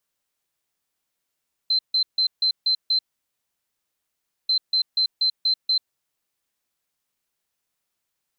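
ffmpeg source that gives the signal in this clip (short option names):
-f lavfi -i "aevalsrc='0.141*sin(2*PI*4090*t)*clip(min(mod(mod(t,2.79),0.24),0.09-mod(mod(t,2.79),0.24))/0.005,0,1)*lt(mod(t,2.79),1.44)':d=5.58:s=44100"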